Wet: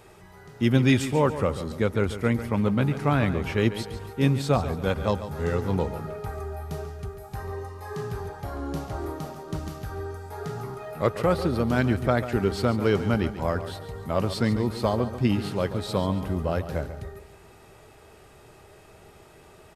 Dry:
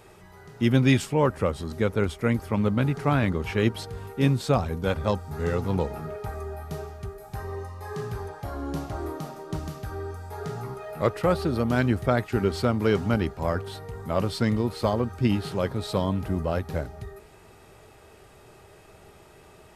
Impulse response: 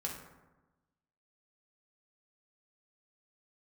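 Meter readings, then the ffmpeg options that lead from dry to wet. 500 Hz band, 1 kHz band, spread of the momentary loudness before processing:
+0.5 dB, +0.5 dB, 13 LU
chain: -af "aecho=1:1:141|282|423|564:0.251|0.1|0.0402|0.0161"

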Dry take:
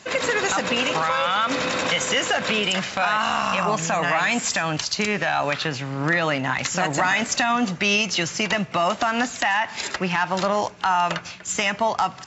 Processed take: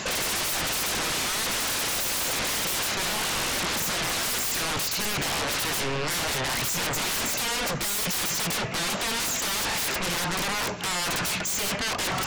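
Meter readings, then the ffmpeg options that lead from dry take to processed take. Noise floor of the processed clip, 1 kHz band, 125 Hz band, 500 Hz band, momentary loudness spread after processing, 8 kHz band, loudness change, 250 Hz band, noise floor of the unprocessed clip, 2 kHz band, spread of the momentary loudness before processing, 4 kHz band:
−29 dBFS, −9.0 dB, −4.5 dB, −8.5 dB, 1 LU, can't be measured, −3.5 dB, −8.0 dB, −40 dBFS, −6.0 dB, 3 LU, −0.5 dB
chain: -af "areverse,acompressor=threshold=-30dB:ratio=5,areverse,aeval=exprs='0.106*sin(PI/2*10*val(0)/0.106)':channel_layout=same,volume=-5dB"

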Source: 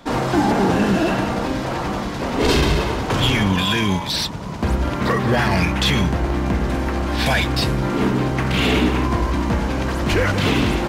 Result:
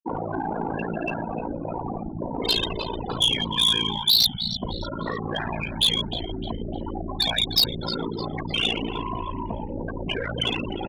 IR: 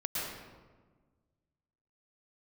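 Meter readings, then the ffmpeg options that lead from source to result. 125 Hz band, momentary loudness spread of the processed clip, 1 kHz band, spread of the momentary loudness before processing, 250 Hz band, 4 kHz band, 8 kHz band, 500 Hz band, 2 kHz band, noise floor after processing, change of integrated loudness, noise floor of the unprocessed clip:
−13.0 dB, 13 LU, −8.5 dB, 6 LU, −11.5 dB, +2.5 dB, −4.5 dB, −9.5 dB, −10.5 dB, −33 dBFS, −5.0 dB, −26 dBFS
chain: -filter_complex "[0:a]afftfilt=real='re*gte(hypot(re,im),0.2)':imag='im*gte(hypot(re,im),0.2)':win_size=1024:overlap=0.75,acrossover=split=510|1100|3700[link_01][link_02][link_03][link_04];[link_01]acompressor=threshold=-33dB:ratio=4[link_05];[link_02]acompressor=threshold=-35dB:ratio=4[link_06];[link_03]acompressor=threshold=-36dB:ratio=4[link_07];[link_04]acompressor=threshold=-40dB:ratio=4[link_08];[link_05][link_06][link_07][link_08]amix=inputs=4:normalize=0,aeval=exprs='val(0)*sin(2*PI*28*n/s)':channel_layout=same,asplit=4[link_09][link_10][link_11][link_12];[link_10]adelay=305,afreqshift=-95,volume=-15.5dB[link_13];[link_11]adelay=610,afreqshift=-190,volume=-23.9dB[link_14];[link_12]adelay=915,afreqshift=-285,volume=-32.3dB[link_15];[link_09][link_13][link_14][link_15]amix=inputs=4:normalize=0,asplit=2[link_16][link_17];[link_17]alimiter=level_in=2.5dB:limit=-24dB:level=0:latency=1:release=54,volume=-2.5dB,volume=-2dB[link_18];[link_16][link_18]amix=inputs=2:normalize=0,lowpass=frequency=4900:width=0.5412,lowpass=frequency=4900:width=1.3066,aexciter=amount=11.3:drive=2.9:freq=3300,asoftclip=type=tanh:threshold=-13dB,equalizer=frequency=90:width=4.3:gain=-4.5,volume=16dB,asoftclip=hard,volume=-16dB,bandreject=frequency=1200:width=14,adynamicequalizer=threshold=0.0141:dfrequency=3400:dqfactor=0.7:tfrequency=3400:tqfactor=0.7:attack=5:release=100:ratio=0.375:range=2:mode=boostabove:tftype=highshelf"

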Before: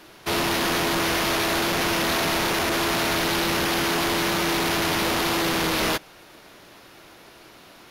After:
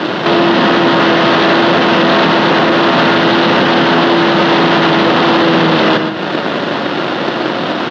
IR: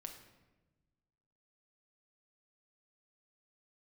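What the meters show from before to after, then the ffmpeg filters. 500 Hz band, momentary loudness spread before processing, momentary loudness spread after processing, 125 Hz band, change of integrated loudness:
+15.5 dB, 1 LU, 7 LU, +13.5 dB, +12.0 dB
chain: -filter_complex "[0:a]asplit=2[link_01][link_02];[link_02]acrusher=bits=6:mix=0:aa=0.000001,volume=-5dB[link_03];[link_01][link_03]amix=inputs=2:normalize=0,acompressor=threshold=-35dB:ratio=6,highpass=frequency=150:width=0.5412,highpass=frequency=150:width=1.3066,equalizer=frequency=250:width_type=q:width=4:gain=4,equalizer=frequency=550:width_type=q:width=4:gain=3,equalizer=frequency=2300:width_type=q:width=4:gain=-8,lowpass=frequency=3600:width=0.5412,lowpass=frequency=3600:width=1.3066,aecho=1:1:123:0.224,asplit=2[link_04][link_05];[1:a]atrim=start_sample=2205,lowshelf=frequency=180:gain=10.5[link_06];[link_05][link_06]afir=irnorm=-1:irlink=0,volume=1dB[link_07];[link_04][link_07]amix=inputs=2:normalize=0,alimiter=level_in=27dB:limit=-1dB:release=50:level=0:latency=1,volume=-1dB"

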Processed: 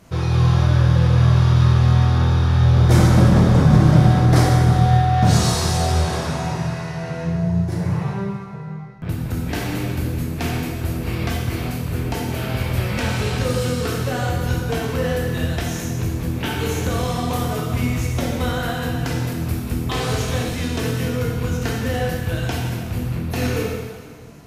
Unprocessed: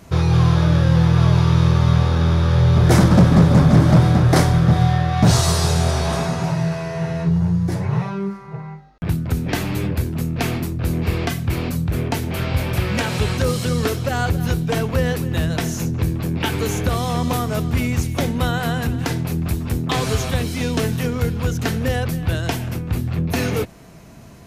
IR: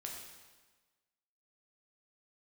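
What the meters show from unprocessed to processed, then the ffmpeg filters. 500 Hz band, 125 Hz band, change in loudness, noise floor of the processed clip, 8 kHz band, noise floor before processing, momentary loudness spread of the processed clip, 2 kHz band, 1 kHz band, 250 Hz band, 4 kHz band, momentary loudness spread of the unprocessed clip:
−1.0 dB, 0.0 dB, −0.5 dB, −30 dBFS, −1.5 dB, −39 dBFS, 11 LU, −1.0 dB, +0.5 dB, −2.0 dB, −1.0 dB, 10 LU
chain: -filter_complex "[1:a]atrim=start_sample=2205,asetrate=33516,aresample=44100[link_01];[0:a][link_01]afir=irnorm=-1:irlink=0,volume=-1dB"

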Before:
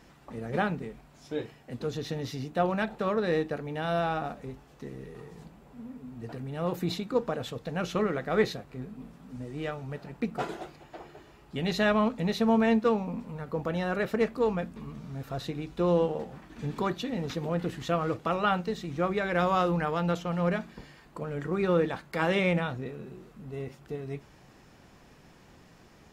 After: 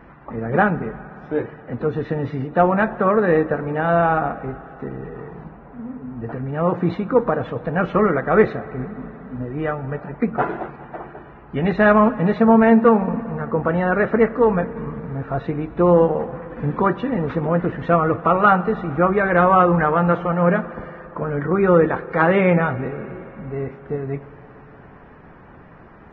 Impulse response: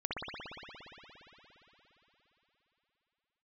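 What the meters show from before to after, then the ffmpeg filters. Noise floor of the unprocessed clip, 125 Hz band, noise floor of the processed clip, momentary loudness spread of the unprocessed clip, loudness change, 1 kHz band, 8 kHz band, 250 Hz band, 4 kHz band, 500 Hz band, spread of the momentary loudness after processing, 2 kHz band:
−56 dBFS, +10.5 dB, −44 dBFS, 18 LU, +11.0 dB, +12.5 dB, below −20 dB, +10.5 dB, can't be measured, +11.0 dB, 18 LU, +11.0 dB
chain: -filter_complex "[0:a]crystalizer=i=5.5:c=0,lowpass=frequency=1600:width=0.5412,lowpass=frequency=1600:width=1.3066,acontrast=46,asplit=2[link_01][link_02];[1:a]atrim=start_sample=2205,lowshelf=frequency=95:gain=2,adelay=48[link_03];[link_02][link_03]afir=irnorm=-1:irlink=0,volume=-23dB[link_04];[link_01][link_04]amix=inputs=2:normalize=0,volume=4.5dB" -ar 22050 -c:a libvorbis -b:a 16k

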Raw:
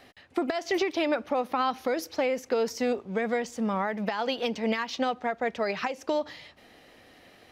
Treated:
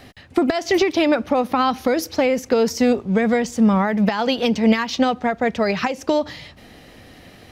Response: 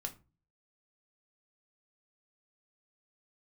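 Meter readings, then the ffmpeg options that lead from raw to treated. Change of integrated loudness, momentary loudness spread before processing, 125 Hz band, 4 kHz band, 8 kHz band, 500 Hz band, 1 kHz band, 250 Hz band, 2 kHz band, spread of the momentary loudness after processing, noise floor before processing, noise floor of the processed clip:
+9.5 dB, 4 LU, can't be measured, +8.5 dB, +10.0 dB, +8.5 dB, +7.5 dB, +13.0 dB, +7.5 dB, 4 LU, −56 dBFS, −46 dBFS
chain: -af "bass=frequency=250:gain=11,treble=frequency=4000:gain=3,volume=7.5dB"

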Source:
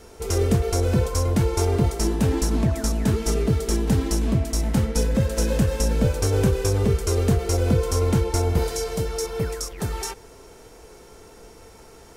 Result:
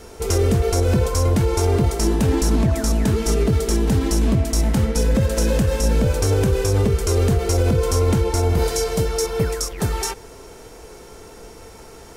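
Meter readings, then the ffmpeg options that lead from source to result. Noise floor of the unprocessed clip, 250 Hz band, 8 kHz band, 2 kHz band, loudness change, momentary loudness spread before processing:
−47 dBFS, +2.5 dB, +3.5 dB, +4.0 dB, +3.5 dB, 6 LU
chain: -af "alimiter=level_in=14dB:limit=-1dB:release=50:level=0:latency=1,volume=-8.5dB"

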